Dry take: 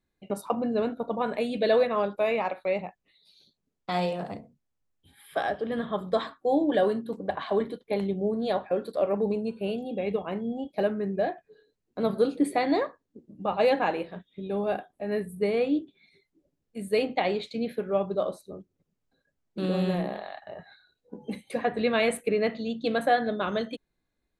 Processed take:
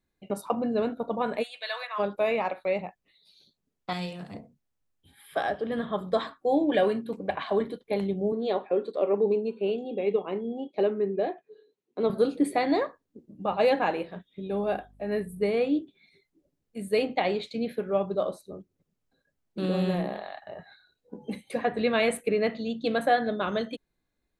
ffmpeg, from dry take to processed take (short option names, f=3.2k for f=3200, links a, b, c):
-filter_complex "[0:a]asplit=3[a][b][c];[a]afade=t=out:st=1.42:d=0.02[d];[b]highpass=f=980:w=0.5412,highpass=f=980:w=1.3066,afade=t=in:st=1.42:d=0.02,afade=t=out:st=1.98:d=0.02[e];[c]afade=t=in:st=1.98:d=0.02[f];[d][e][f]amix=inputs=3:normalize=0,asettb=1/sr,asplit=3[g][h][i];[g]atrim=end=3.934[j];[h]atrim=start=3.93:end=4.34,asetpts=PTS-STARTPTS,afade=t=in:d=0.004:c=qsin,afade=t=out:st=0.406:d=0.004:c=qsin,equalizer=f=650:w=0.67:g=-13.5[k];[i]atrim=start=4.336[l];[j][k]acrossfade=d=0.004:c1=hsin:c2=qsin[m];[m][l]acrossfade=d=0.004:c1=qsin:c2=hsin,asettb=1/sr,asplit=3[n][o][p];[n]atrim=end=6.544[q];[o]atrim=start=6.54:end=7.43,asetpts=PTS-STARTPTS,afade=t=in:d=0.004:c=qsin,afade=t=out:st=0.886:d=0.004:c=qsin,equalizer=f=2.4k:t=o:w=0.38:g=13[r];[p]atrim=start=7.426[s];[q][r]acrossfade=d=0.004:c1=hsin:c2=qsin[t];[t][s]acrossfade=d=0.004:c1=qsin:c2=hsin,asettb=1/sr,asplit=3[u][v][w];[u]atrim=end=8.324[x];[v]atrim=start=8.32:end=12.1,asetpts=PTS-STARTPTS,afade=t=in:d=0.004:c=qsin,afade=t=out:st=3.776:d=0.004:c=qsin,highpass=230,equalizer=f=400:t=q:w=4:g=7,equalizer=f=660:t=q:w=4:g=-4,equalizer=f=1.6k:t=q:w=4:g=-7,equalizer=f=5.1k:t=q:w=4:g=-10,lowpass=f=6.6k:w=0.5412,lowpass=f=6.6k:w=1.3066[y];[w]atrim=start=12.096[z];[x][y]acrossfade=d=0.004:c1=hsin:c2=qsin[aa];[aa][z]acrossfade=d=0.004:c1=qsin:c2=hsin,asettb=1/sr,asplit=3[ab][ac][ad];[ab]atrim=end=14.514[ae];[ac]atrim=start=14.51:end=15.5,asetpts=PTS-STARTPTS,afade=t=in:d=0.004:c=qsin,afade=t=out:st=0.986:d=0.004:c=qsin,aeval=exprs='val(0)+0.00158*(sin(2*PI*50*n/s)+sin(2*PI*2*50*n/s)/2+sin(2*PI*3*50*n/s)/3+sin(2*PI*4*50*n/s)/4+sin(2*PI*5*50*n/s)/5)':c=same[af];[ad]atrim=start=15.496[ag];[ae][af]acrossfade=d=0.004:c1=hsin:c2=qsin[ah];[ah][ag]acrossfade=d=0.004:c1=qsin:c2=hsin"